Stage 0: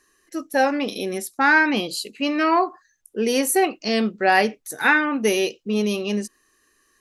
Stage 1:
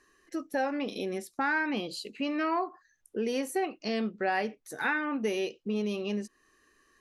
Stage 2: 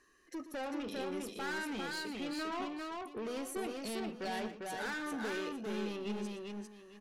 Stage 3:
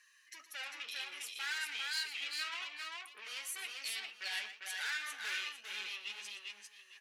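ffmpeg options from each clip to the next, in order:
-af "acompressor=threshold=-35dB:ratio=2,aemphasis=mode=reproduction:type=50kf"
-filter_complex "[0:a]asoftclip=type=tanh:threshold=-34dB,asplit=2[a][b];[b]aecho=0:1:118|399|853:0.237|0.708|0.188[c];[a][c]amix=inputs=2:normalize=0,volume=-3dB"
-af "highpass=f=2.3k:t=q:w=1.6,flanger=delay=4.7:depth=4.8:regen=45:speed=1.9:shape=sinusoidal,volume=8dB"

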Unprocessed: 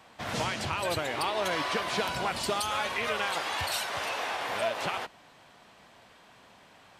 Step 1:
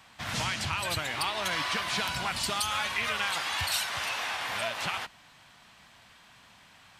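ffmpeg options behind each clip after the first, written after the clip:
-af "equalizer=f=450:w=0.72:g=-13,volume=3.5dB"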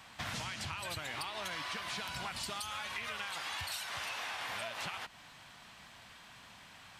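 -af "acompressor=threshold=-38dB:ratio=10,volume=1dB"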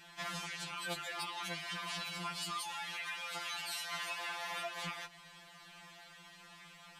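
-af "afftfilt=real='re*2.83*eq(mod(b,8),0)':imag='im*2.83*eq(mod(b,8),0)':win_size=2048:overlap=0.75,volume=1.5dB"

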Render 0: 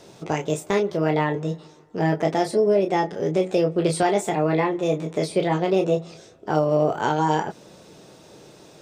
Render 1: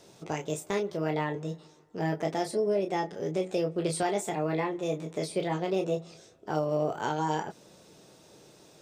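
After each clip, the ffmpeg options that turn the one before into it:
-af "highshelf=f=5.2k:g=6,volume=-8.5dB"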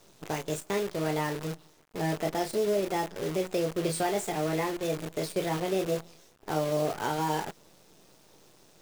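-af "acrusher=bits=7:dc=4:mix=0:aa=0.000001"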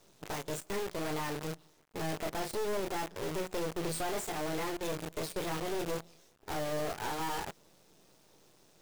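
-af "aeval=exprs='(tanh(35.5*val(0)+0.75)-tanh(0.75))/35.5':c=same"

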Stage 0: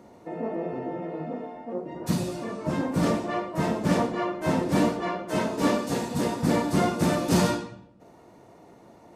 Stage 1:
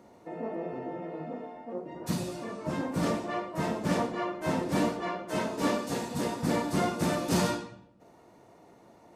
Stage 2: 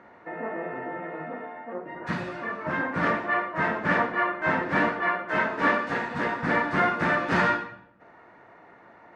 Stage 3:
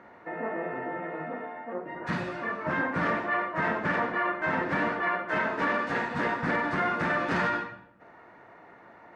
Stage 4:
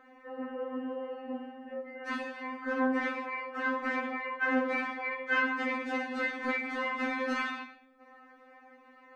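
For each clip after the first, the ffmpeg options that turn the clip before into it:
-af "lowshelf=f=480:g=-3,volume=-3dB"
-af "lowpass=f=1.7k:t=q:w=2.8,tiltshelf=f=970:g=-6,volume=4.5dB"
-af "alimiter=limit=-18.5dB:level=0:latency=1:release=38"
-af "afftfilt=real='re*3.46*eq(mod(b,12),0)':imag='im*3.46*eq(mod(b,12),0)':win_size=2048:overlap=0.75"

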